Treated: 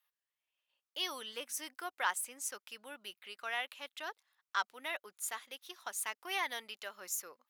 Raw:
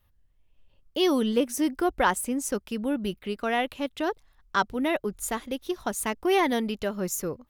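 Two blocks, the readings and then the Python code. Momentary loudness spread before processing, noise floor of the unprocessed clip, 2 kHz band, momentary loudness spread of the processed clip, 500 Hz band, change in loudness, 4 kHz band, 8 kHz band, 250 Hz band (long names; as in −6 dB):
8 LU, −65 dBFS, −7.0 dB, 11 LU, −21.5 dB, −12.0 dB, −6.0 dB, −6.0 dB, −30.5 dB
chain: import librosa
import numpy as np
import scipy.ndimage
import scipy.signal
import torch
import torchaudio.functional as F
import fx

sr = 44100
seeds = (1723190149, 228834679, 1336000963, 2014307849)

y = scipy.signal.sosfilt(scipy.signal.butter(2, 1200.0, 'highpass', fs=sr, output='sos'), x)
y = F.gain(torch.from_numpy(y), -6.0).numpy()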